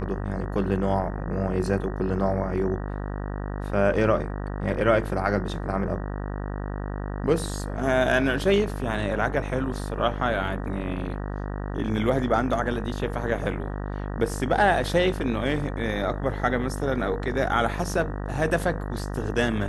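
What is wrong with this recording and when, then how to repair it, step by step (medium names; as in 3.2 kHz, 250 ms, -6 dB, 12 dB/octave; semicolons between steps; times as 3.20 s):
buzz 50 Hz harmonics 38 -31 dBFS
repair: de-hum 50 Hz, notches 38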